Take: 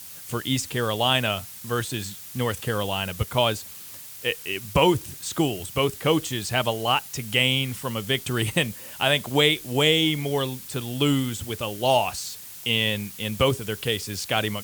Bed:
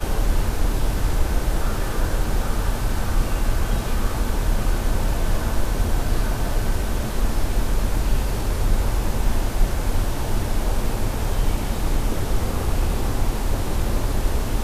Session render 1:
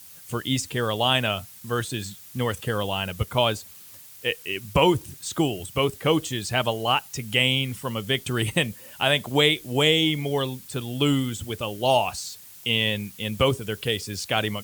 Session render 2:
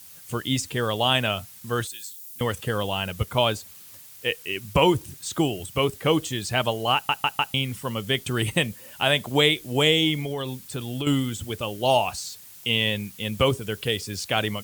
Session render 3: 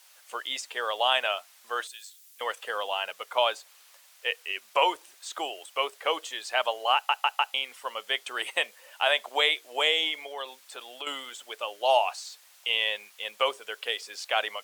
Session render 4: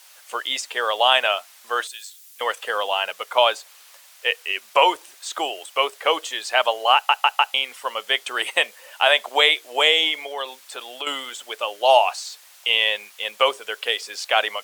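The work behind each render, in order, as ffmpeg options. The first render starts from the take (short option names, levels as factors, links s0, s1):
-af "afftdn=nr=6:nf=-41"
-filter_complex "[0:a]asettb=1/sr,asplit=3[s0][s1][s2];[s0]atrim=end=1.874[s3];[s1]atrim=start=1.87:end=2.41,asetpts=PTS-STARTPTS,afade=t=in:d=0.004:c=qsin,afade=t=out:st=0.536:d=0.004:c=qsin,aderivative[s4];[s2]atrim=start=2.406[s5];[s3][s4]acrossfade=d=0.004:c1=hsin:c2=qsin[s6];[s6][s5]acrossfade=d=0.004:c1=qsin:c2=hsin,asettb=1/sr,asplit=3[s7][s8][s9];[s7]atrim=end=10.204[s10];[s8]atrim=start=10.2:end=11.07,asetpts=PTS-STARTPTS,afade=t=in:d=0.004:c=qsin,afade=t=out:st=0.866:d=0.004:c=qsin,acompressor=threshold=0.0562:ratio=6:attack=3.2:release=140:knee=1:detection=peak[s11];[s9]atrim=start=11.066[s12];[s10][s11]acrossfade=d=0.004:c1=hsin:c2=qsin[s13];[s13][s12]acrossfade=d=0.004:c1=qsin:c2=hsin,asplit=5[s14][s15][s16][s17][s18];[s14]atrim=end=7.092[s19];[s15]atrim=start=6.938:end=7.092[s20];[s16]atrim=start=6.938:end=7.092[s21];[s17]atrim=start=6.938:end=7.092[s22];[s18]atrim=start=7.538[s23];[s19][s20]acrossfade=d=0.004:c1=hsin:c2=hsin[s24];[s24][s21]acrossfade=d=0.004:c1=hsin:c2=hsin[s25];[s25][s22]acrossfade=d=0.004:c1=hsin:c2=hsin[s26];[s26][s23]acrossfade=d=0.004:c1=hsin:c2=hsin"
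-af "highpass=f=590:w=0.5412,highpass=f=590:w=1.3066,aemphasis=mode=reproduction:type=50kf"
-af "volume=2.37,alimiter=limit=0.794:level=0:latency=1"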